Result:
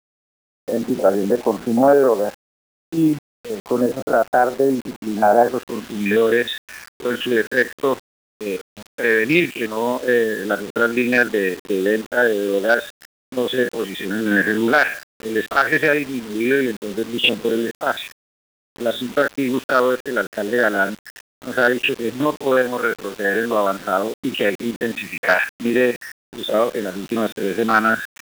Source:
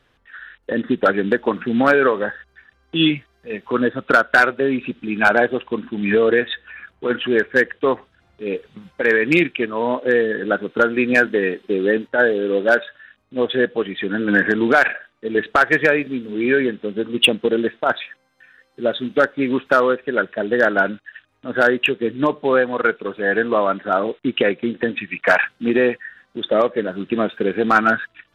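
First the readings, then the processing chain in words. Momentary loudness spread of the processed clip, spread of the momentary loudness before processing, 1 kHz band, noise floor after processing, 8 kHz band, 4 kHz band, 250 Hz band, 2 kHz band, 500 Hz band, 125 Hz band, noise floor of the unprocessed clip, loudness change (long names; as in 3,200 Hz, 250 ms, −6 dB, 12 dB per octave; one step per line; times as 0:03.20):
11 LU, 12 LU, −0.5 dB, below −85 dBFS, can't be measured, −1.5 dB, −0.5 dB, −2.0 dB, 0.0 dB, −0.5 dB, −62 dBFS, −0.5 dB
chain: spectrum averaged block by block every 50 ms
low-pass filter sweep 740 Hz → 5,100 Hz, 0:05.36–0:06.00
bit-depth reduction 6 bits, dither none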